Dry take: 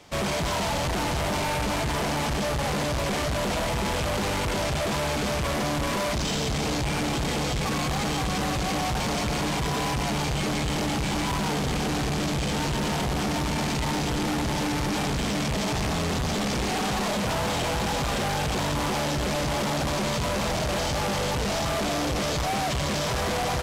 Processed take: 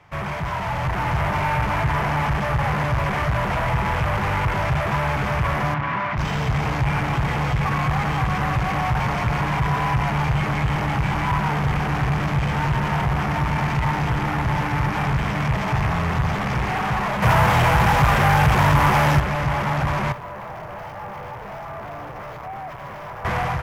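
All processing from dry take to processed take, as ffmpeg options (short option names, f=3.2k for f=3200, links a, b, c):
-filter_complex "[0:a]asettb=1/sr,asplit=3[a][b][c];[a]atrim=end=5.744[d];[b]atrim=start=5.74:end=6.18,asetpts=PTS-STARTPTS,afade=t=in:d=0.004:c=qsin,afade=t=out:st=0.436:d=0.004:c=qsin,highpass=130,lowpass=3k,equalizer=f=480:w=1.5:g=-7[e];[c]atrim=start=6.176[f];[d][e]acrossfade=d=0.004:c1=hsin:c2=qsin[g];[g][f]acrossfade=d=0.004:c1=qsin:c2=hsin,asettb=1/sr,asplit=3[h][i][j];[h]atrim=end=17.224[k];[i]atrim=start=17.22:end=19.2,asetpts=PTS-STARTPTS,afade=t=in:d=0.004:c=qsin,afade=t=out:st=1.976:d=0.004:c=qsin,highshelf=f=7.4k:g=9,acontrast=38[l];[j]atrim=start=19.196[m];[k][l]acrossfade=d=0.004:c1=hsin:c2=qsin[n];[n][m]acrossfade=d=0.004:c1=qsin:c2=hsin,asettb=1/sr,asplit=3[o][p][q];[o]atrim=end=20.124[r];[p]atrim=start=20.12:end=23.25,asetpts=PTS-STARTPTS,afade=t=in:d=0.004:c=qsin,afade=t=out:st=3.126:d=0.004:c=qsin,highpass=590,volume=35.5dB,asoftclip=hard,volume=-35.5dB,tiltshelf=f=850:g=7[s];[q]atrim=start=23.246[t];[r][s]acrossfade=d=0.004:c1=hsin:c2=qsin[u];[u][t]acrossfade=d=0.004:c1=qsin:c2=hsin,equalizer=f=125:t=o:w=1:g=9,equalizer=f=250:t=o:w=1:g=-9,equalizer=f=500:t=o:w=1:g=-5,equalizer=f=1k:t=o:w=1:g=5,equalizer=f=2k:t=o:w=1:g=5,equalizer=f=4k:t=o:w=1:g=-10,equalizer=f=8k:t=o:w=1:g=-11,dynaudnorm=f=600:g=3:m=5dB,highshelf=f=7.7k:g=-8.5,volume=-1dB"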